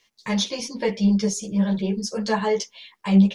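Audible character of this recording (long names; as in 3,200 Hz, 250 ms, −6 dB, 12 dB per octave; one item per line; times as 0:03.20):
a quantiser's noise floor 12 bits, dither none
a shimmering, thickened sound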